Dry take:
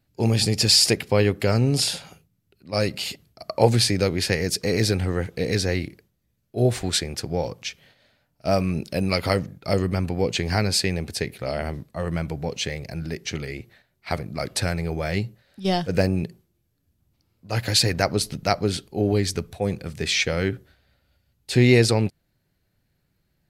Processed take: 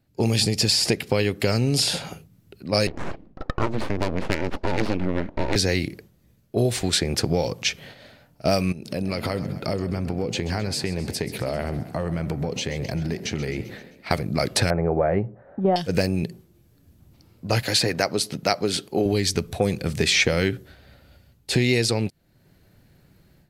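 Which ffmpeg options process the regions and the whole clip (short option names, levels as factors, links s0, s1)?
-filter_complex "[0:a]asettb=1/sr,asplit=3[s0][s1][s2];[s0]atrim=end=2.874[s3];[s1]atrim=start=2.87:end=5.56,asetpts=PTS-STARTPTS,afade=t=in:d=0.004:c=qsin,afade=t=out:st=2.686:d=0.004:c=qsin,aeval=exprs='abs(val(0))':c=same,adynamicsmooth=sensitivity=1:basefreq=1400[s4];[s2]atrim=start=5.556[s5];[s3][s4]acrossfade=d=0.004:c1=hsin:c2=qsin[s6];[s6][s5]acrossfade=d=0.004:c1=qsin:c2=hsin,asettb=1/sr,asplit=3[s7][s8][s9];[s7]atrim=end=8.724[s10];[s8]atrim=start=8.72:end=14.11,asetpts=PTS-STARTPTS,afade=t=in:d=0.004:c=qsin,afade=t=out:st=5.386:d=0.004:c=qsin,acompressor=threshold=0.01:ratio=4:attack=3.2:release=140:knee=1:detection=peak,asplit=7[s11][s12][s13][s14][s15][s16][s17];[s12]adelay=131,afreqshift=33,volume=0.178[s18];[s13]adelay=262,afreqshift=66,volume=0.108[s19];[s14]adelay=393,afreqshift=99,volume=0.0661[s20];[s15]adelay=524,afreqshift=132,volume=0.0403[s21];[s16]adelay=655,afreqshift=165,volume=0.0245[s22];[s17]adelay=786,afreqshift=198,volume=0.015[s23];[s11][s18][s19][s20][s21][s22][s23]amix=inputs=7:normalize=0,atrim=end_sample=237699[s24];[s9]atrim=start=14.106[s25];[s10][s24]acrossfade=d=0.004:c1=hsin:c2=qsin[s26];[s26][s25]acrossfade=d=0.004:c1=qsin:c2=hsin,asettb=1/sr,asplit=3[s27][s28][s29];[s27]atrim=end=14.704[s30];[s28]atrim=start=14.7:end=15.76,asetpts=PTS-STARTPTS,afade=t=in:d=0.004:c=qsin,afade=t=out:st=1.056:d=0.004:c=qsin,lowpass=f=1500:w=0.5412,lowpass=f=1500:w=1.3066,equalizer=f=660:w=0.76:g=10.5[s31];[s29]atrim=start=15.756[s32];[s30][s31]acrossfade=d=0.004:c1=hsin:c2=qsin[s33];[s33][s32]acrossfade=d=0.004:c1=qsin:c2=hsin,asettb=1/sr,asplit=3[s34][s35][s36];[s34]atrim=end=17.624[s37];[s35]atrim=start=17.62:end=19.06,asetpts=PTS-STARTPTS,afade=t=in:d=0.004:c=qsin,afade=t=out:st=1.436:d=0.004:c=qsin,highpass=97,lowshelf=f=230:g=-9[s38];[s36]atrim=start=19.056[s39];[s37][s38]acrossfade=d=0.004:c1=hsin:c2=qsin[s40];[s40][s39]acrossfade=d=0.004:c1=qsin:c2=hsin,dynaudnorm=f=180:g=3:m=4.22,equalizer=f=290:w=0.31:g=5,acrossover=split=2200|5800[s41][s42][s43];[s41]acompressor=threshold=0.112:ratio=4[s44];[s42]acompressor=threshold=0.0794:ratio=4[s45];[s43]acompressor=threshold=0.0447:ratio=4[s46];[s44][s45][s46]amix=inputs=3:normalize=0,volume=0.891"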